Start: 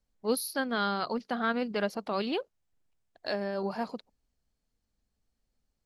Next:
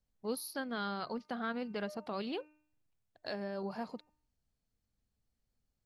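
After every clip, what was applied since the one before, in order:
parametric band 110 Hz +6.5 dB 1.3 octaves
hum removal 303.6 Hz, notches 9
downward compressor 1.5 to 1, threshold −35 dBFS, peak gain reduction 5 dB
level −5 dB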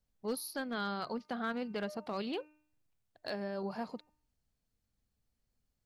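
gain into a clipping stage and back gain 30 dB
level +1 dB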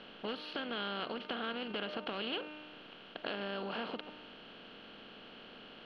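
compressor on every frequency bin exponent 0.4
downward compressor, threshold −34 dBFS, peak gain reduction 6 dB
transistor ladder low-pass 3,300 Hz, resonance 70%
level +9 dB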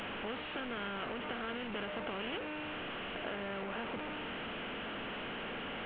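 linear delta modulator 16 kbit/s, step −33 dBFS
level −1.5 dB

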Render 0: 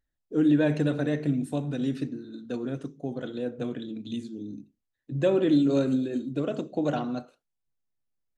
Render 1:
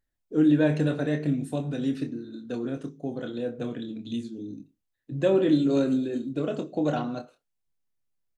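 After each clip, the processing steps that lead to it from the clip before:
double-tracking delay 26 ms −8 dB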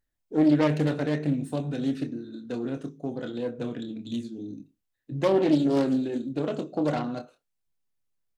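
phase distortion by the signal itself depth 0.28 ms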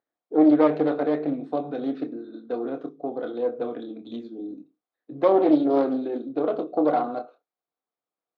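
loudspeaker in its box 300–3,600 Hz, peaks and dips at 310 Hz +6 dB, 470 Hz +7 dB, 720 Hz +10 dB, 1,200 Hz +7 dB, 1,800 Hz −5 dB, 2,800 Hz −10 dB

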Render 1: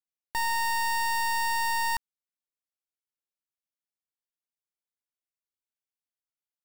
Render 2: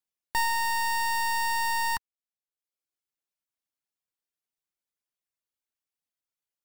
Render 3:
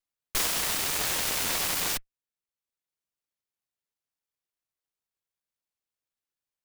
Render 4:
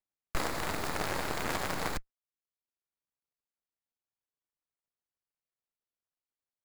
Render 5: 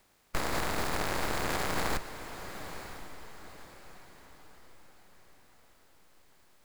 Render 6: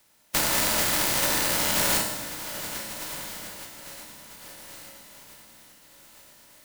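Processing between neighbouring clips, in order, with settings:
reverb reduction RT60 0.77 s; level +3 dB
lower of the sound and its delayed copy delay 2 ms; parametric band 3,500 Hz +10.5 dB 0.24 octaves; short delay modulated by noise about 1,700 Hz, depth 0.35 ms
running median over 15 samples; leveller curve on the samples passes 1
compressor on every frequency bin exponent 0.6; brickwall limiter −22 dBFS, peak gain reduction 5.5 dB; feedback delay with all-pass diffusion 966 ms, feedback 40%, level −11 dB; level +2 dB
compressing power law on the bin magnitudes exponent 0.27; convolution reverb RT60 1.0 s, pre-delay 3 ms, DRR −1 dB; level +2 dB

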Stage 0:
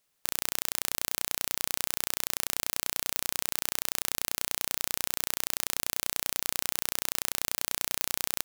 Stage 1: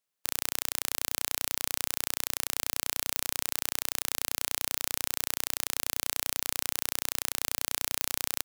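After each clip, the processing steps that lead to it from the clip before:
low-shelf EQ 76 Hz −10 dB
expander for the loud parts 1.5 to 1, over −53 dBFS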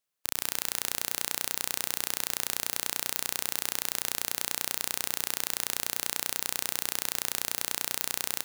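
convolution reverb RT60 2.5 s, pre-delay 109 ms, DRR 14 dB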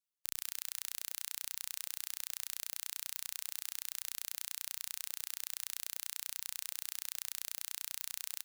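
reverb reduction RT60 1.8 s
guitar amp tone stack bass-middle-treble 5-5-5
level −1.5 dB

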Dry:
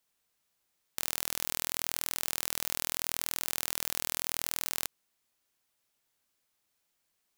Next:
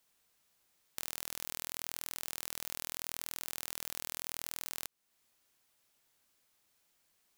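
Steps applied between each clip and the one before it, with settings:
downward compressor 2 to 1, threshold −46 dBFS, peak gain reduction 11.5 dB
level +4 dB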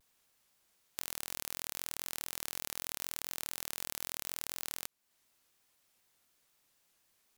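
pitch modulation by a square or saw wave saw down 4 Hz, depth 250 cents
level +1 dB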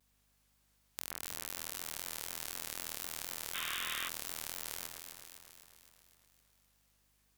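delay that swaps between a low-pass and a high-pass 128 ms, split 1,900 Hz, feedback 77%, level −4 dB
sound drawn into the spectrogram noise, 0:03.54–0:04.09, 1,000–3,800 Hz −38 dBFS
mains hum 50 Hz, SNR 33 dB
level −2.5 dB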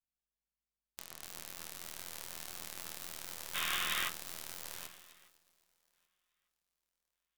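feedback echo with a high-pass in the loop 1,197 ms, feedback 38%, high-pass 170 Hz, level −13.5 dB
convolution reverb RT60 0.40 s, pre-delay 6 ms, DRR 4.5 dB
expander for the loud parts 2.5 to 1, over −56 dBFS
level +4 dB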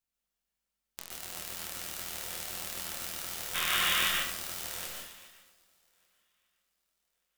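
dense smooth reverb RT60 0.54 s, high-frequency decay 0.95×, pre-delay 115 ms, DRR −0.5 dB
level +4 dB

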